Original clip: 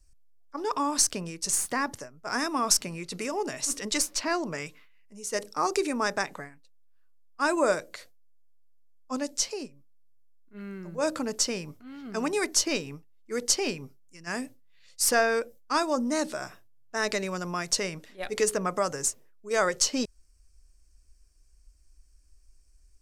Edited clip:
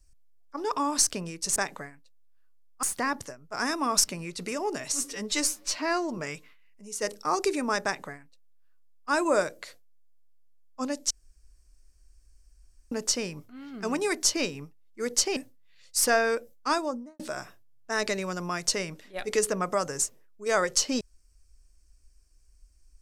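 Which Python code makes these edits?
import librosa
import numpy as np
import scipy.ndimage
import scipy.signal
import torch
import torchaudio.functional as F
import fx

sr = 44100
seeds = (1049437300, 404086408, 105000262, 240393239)

y = fx.studio_fade_out(x, sr, start_s=15.73, length_s=0.51)
y = fx.edit(y, sr, fx.stretch_span(start_s=3.66, length_s=0.83, factor=1.5),
    fx.duplicate(start_s=6.15, length_s=1.27, to_s=1.56),
    fx.room_tone_fill(start_s=9.42, length_s=1.81),
    fx.cut(start_s=13.68, length_s=0.73), tone=tone)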